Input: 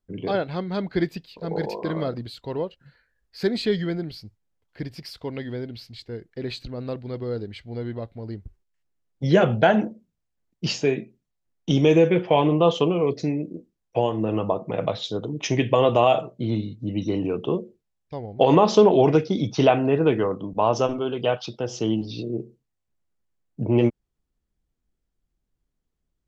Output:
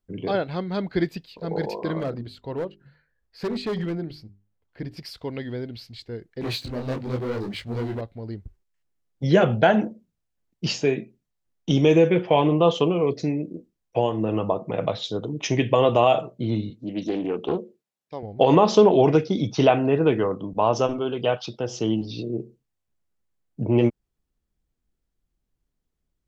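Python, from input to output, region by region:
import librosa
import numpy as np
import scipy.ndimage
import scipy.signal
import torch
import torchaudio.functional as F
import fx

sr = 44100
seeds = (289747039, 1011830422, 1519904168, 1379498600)

y = fx.chain(x, sr, fx.high_shelf(hz=2600.0, db=-8.0),
    fx.hum_notches(base_hz=50, count=8),
    fx.clip_hard(threshold_db=-23.0), at=(1.99, 4.97))
y = fx.chain(y, sr, fx.highpass(hz=57.0, slope=12),
    fx.leveller(passes=3),
    fx.detune_double(cents=56), at=(6.41, 8.01))
y = fx.chain(y, sr, fx.highpass(hz=210.0, slope=12),
    fx.doppler_dist(depth_ms=0.27), at=(16.7, 18.23))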